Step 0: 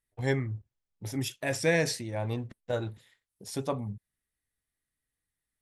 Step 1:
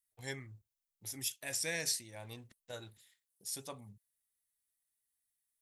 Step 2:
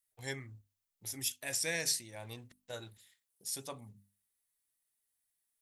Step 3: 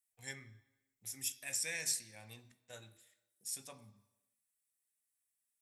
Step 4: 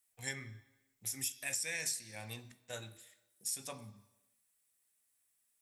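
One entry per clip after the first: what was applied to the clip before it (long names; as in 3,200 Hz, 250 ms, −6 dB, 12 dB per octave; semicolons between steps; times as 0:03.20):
first-order pre-emphasis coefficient 0.9; level +2 dB
mains-hum notches 50/100/150/200/250/300 Hz; level +2 dB
convolution reverb RT60 1.0 s, pre-delay 3 ms, DRR 9 dB; level −4.5 dB
downward compressor 5 to 1, threshold −43 dBFS, peak gain reduction 11.5 dB; level +8 dB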